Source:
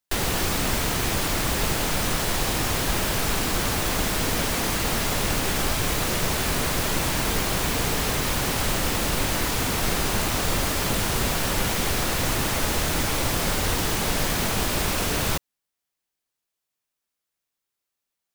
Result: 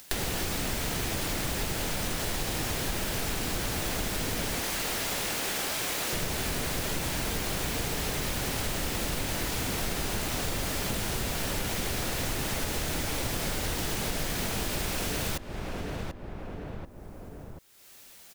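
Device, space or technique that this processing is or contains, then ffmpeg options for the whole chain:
upward and downward compression: -filter_complex "[0:a]asettb=1/sr,asplit=3[link_01][link_02][link_03];[link_01]atrim=end=4.604[link_04];[link_02]atrim=start=4.6:end=6.13,asetpts=PTS-STARTPTS,afade=type=in:duration=0.004:curve=qsin,afade=type=out:start_time=1.526:duration=0.004:curve=qsin,highpass=frequency=510:poles=1[link_05];[link_03]atrim=start=6.126[link_06];[link_04][link_05]acrossfade=duration=0.004:curve1=hsin:curve2=qsin[link_07];[link_07][link_06]acrossfade=duration=0.004:curve1=qsin:curve2=hsin,equalizer=frequency=1100:width_type=o:width=0.64:gain=-4,asplit=2[link_08][link_09];[link_09]adelay=737,lowpass=frequency=1300:poles=1,volume=-12dB,asplit=2[link_10][link_11];[link_11]adelay=737,lowpass=frequency=1300:poles=1,volume=0.26,asplit=2[link_12][link_13];[link_13]adelay=737,lowpass=frequency=1300:poles=1,volume=0.26[link_14];[link_08][link_10][link_12][link_14]amix=inputs=4:normalize=0,acompressor=mode=upward:threshold=-31dB:ratio=2.5,acompressor=threshold=-33dB:ratio=4,volume=3.5dB"

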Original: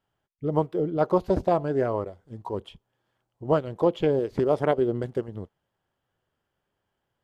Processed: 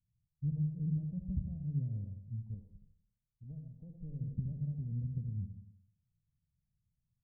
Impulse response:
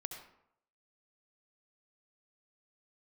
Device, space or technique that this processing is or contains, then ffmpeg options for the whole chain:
club heard from the street: -filter_complex "[0:a]aecho=1:1:1.4:0.86,alimiter=limit=-17.5dB:level=0:latency=1:release=337,lowpass=frequency=180:width=0.5412,lowpass=frequency=180:width=1.3066[link_01];[1:a]atrim=start_sample=2205[link_02];[link_01][link_02]afir=irnorm=-1:irlink=0,asettb=1/sr,asplit=3[link_03][link_04][link_05];[link_03]atrim=end=2.544[link_06];[link_04]atrim=start=2.54:end=4.21,asetpts=PTS-STARTPTS,afade=type=in:duration=0.004:curve=qsin,afade=type=out:start_time=1.666:duration=0.004:curve=qsin,equalizer=frequency=120:width=0.54:gain=-11.5[link_07];[link_05]atrim=start=4.206[link_08];[link_06][link_07]acrossfade=duration=0.004:curve1=hsin:curve2=qsin[link_09];[link_09][link_08]acrossfade=duration=0.004:curve1=qsin:curve2=hsin,volume=1dB"

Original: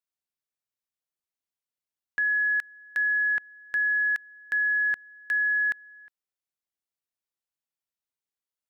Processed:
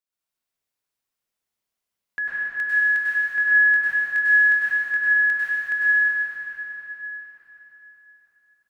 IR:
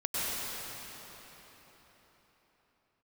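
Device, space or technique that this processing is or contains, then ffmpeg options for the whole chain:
cathedral: -filter_complex "[1:a]atrim=start_sample=2205[link_01];[0:a][link_01]afir=irnorm=-1:irlink=0,asettb=1/sr,asplit=3[link_02][link_03][link_04];[link_02]atrim=end=3.364[link_05];[link_03]atrim=start=3.36:end=4.97,asetpts=PTS-STARTPTS,afade=type=in:duration=0.004:curve=qsin,afade=type=out:start_time=1.606:duration=0.004:curve=qsin,asplit=2[link_06][link_07];[link_07]adelay=22,volume=-6dB[link_08];[link_06][link_08]amix=inputs=2:normalize=0,atrim=end_sample=71001[link_09];[link_04]atrim=start=4.966[link_10];[link_05][link_09]acrossfade=duration=0.004:curve1=hsin:curve2=qsin[link_11];[link_11][link_10]acrossfade=duration=0.004:curve1=qsin:curve2=hsin"

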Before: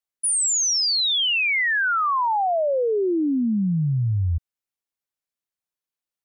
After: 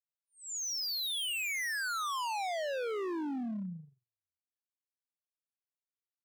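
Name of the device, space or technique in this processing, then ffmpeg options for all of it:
walkie-talkie: -filter_complex "[0:a]asettb=1/sr,asplit=3[link_01][link_02][link_03];[link_01]atrim=end=1.334[link_04];[link_02]atrim=start=1.33:end=2.09,asetpts=PTS-STARTPTS,afade=type=in:duration=0.004:curve=qsin,afade=type=out:start_time=0.756:duration=0.004:curve=qsin,aemphasis=mode=reproduction:type=cd[link_05];[link_03]atrim=start=2.086[link_06];[link_04][link_05]acrossfade=duration=0.004:curve1=hsin:curve2=qsin[link_07];[link_07][link_06]acrossfade=duration=0.004:curve1=qsin:curve2=hsin,highpass=490,lowpass=2900,aecho=1:1:129:0.106,asoftclip=type=hard:threshold=-34.5dB,agate=range=-59dB:threshold=-40dB:ratio=16:detection=peak"

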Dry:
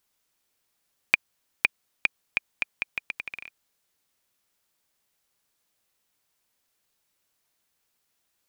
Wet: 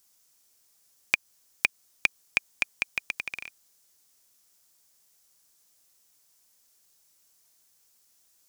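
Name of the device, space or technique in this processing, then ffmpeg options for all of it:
over-bright horn tweeter: -af "equalizer=frequency=3300:width_type=o:width=0.61:gain=3,highshelf=frequency=4400:width_type=q:width=1.5:gain=8,alimiter=limit=-4.5dB:level=0:latency=1:release=156,volume=2.5dB"

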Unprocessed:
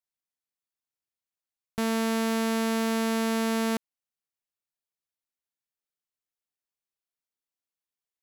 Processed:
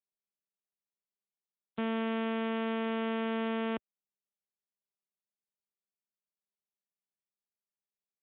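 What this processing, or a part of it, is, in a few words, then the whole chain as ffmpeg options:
mobile call with aggressive noise cancelling: -af "highpass=140,afftdn=noise_reduction=28:noise_floor=-51,volume=-4.5dB" -ar 8000 -c:a libopencore_amrnb -b:a 12200

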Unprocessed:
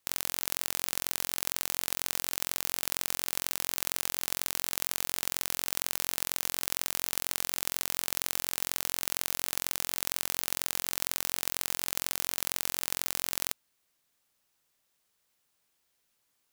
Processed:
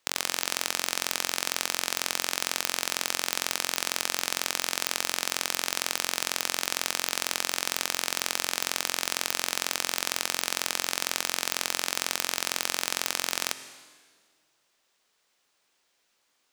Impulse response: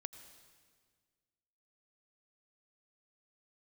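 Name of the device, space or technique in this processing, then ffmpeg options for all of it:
filtered reverb send: -filter_complex "[0:a]asplit=2[link_01][link_02];[link_02]highpass=230,lowpass=8000[link_03];[1:a]atrim=start_sample=2205[link_04];[link_03][link_04]afir=irnorm=-1:irlink=0,volume=10dB[link_05];[link_01][link_05]amix=inputs=2:normalize=0,volume=-2dB"

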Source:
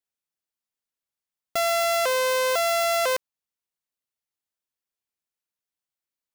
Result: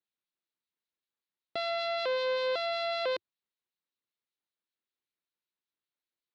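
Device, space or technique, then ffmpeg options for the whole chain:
guitar amplifier with harmonic tremolo: -filter_complex "[0:a]asettb=1/sr,asplit=3[link_01][link_02][link_03];[link_01]atrim=end=1.714[link_04];[link_02]atrim=start=1.71:end=2.39,asetpts=PTS-STARTPTS,afade=type=in:duration=0.004:curve=qsin,afade=type=out:start_time=0.676:duration=0.004:curve=qsin,lowpass=8000[link_05];[link_03]atrim=start=2.386[link_06];[link_04][link_05]acrossfade=duration=0.004:curve1=hsin:curve2=qsin[link_07];[link_07][link_06]acrossfade=duration=0.004:curve1=qsin:curve2=hsin,acrossover=split=2200[link_08][link_09];[link_08]aeval=exprs='val(0)*(1-0.5/2+0.5/2*cos(2*PI*5.2*n/s))':channel_layout=same[link_10];[link_09]aeval=exprs='val(0)*(1-0.5/2-0.5/2*cos(2*PI*5.2*n/s))':channel_layout=same[link_11];[link_10][link_11]amix=inputs=2:normalize=0,asoftclip=type=tanh:threshold=-26.5dB,highpass=91,equalizer=frequency=97:width_type=q:width=4:gain=-6,equalizer=frequency=350:width_type=q:width=4:gain=5,equalizer=frequency=710:width_type=q:width=4:gain=-4,equalizer=frequency=4000:width_type=q:width=4:gain=7,lowpass=frequency=4100:width=0.5412,lowpass=frequency=4100:width=1.3066"

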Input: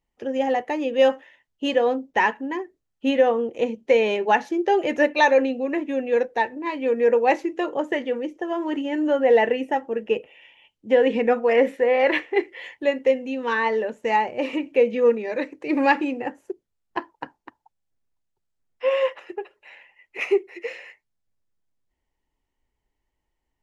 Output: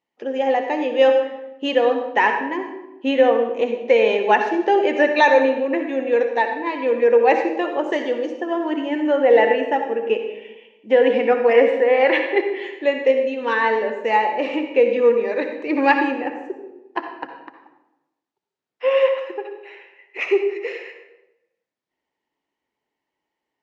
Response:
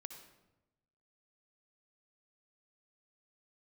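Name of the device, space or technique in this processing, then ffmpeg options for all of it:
supermarket ceiling speaker: -filter_complex "[0:a]asettb=1/sr,asplit=3[link_01][link_02][link_03];[link_01]atrim=end=7.864[link_04];[link_02]atrim=start=7.86:end=8.4,asetpts=PTS-STARTPTS,afade=type=in:duration=0.004:curve=qsin,afade=type=out:start_time=0.536:duration=0.004:curve=qsin,highshelf=frequency=3500:width_type=q:width=1.5:gain=9[link_05];[link_03]atrim=start=8.396[link_06];[link_04][link_05]acrossfade=duration=0.004:curve1=hsin:curve2=qsin[link_07];[link_07][link_06]acrossfade=duration=0.004:curve1=qsin:curve2=hsin,highpass=260,lowpass=5000[link_08];[1:a]atrim=start_sample=2205[link_09];[link_08][link_09]afir=irnorm=-1:irlink=0,volume=8.5dB"

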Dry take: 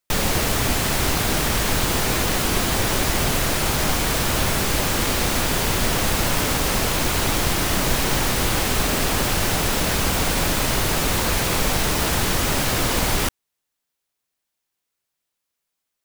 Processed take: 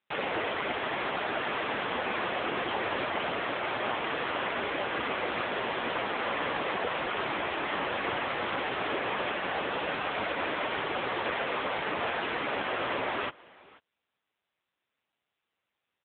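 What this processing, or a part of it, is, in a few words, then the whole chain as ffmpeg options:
satellite phone: -af "highpass=370,lowpass=3000,aecho=1:1:488:0.0708,volume=-1.5dB" -ar 8000 -c:a libopencore_amrnb -b:a 6700

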